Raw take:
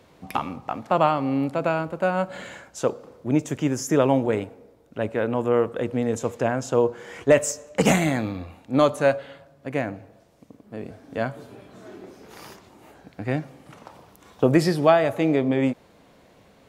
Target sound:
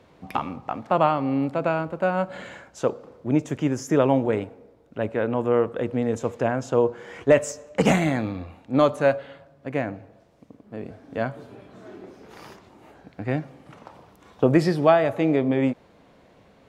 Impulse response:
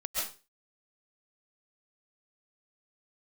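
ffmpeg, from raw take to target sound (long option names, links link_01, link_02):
-af "lowpass=frequency=3600:poles=1"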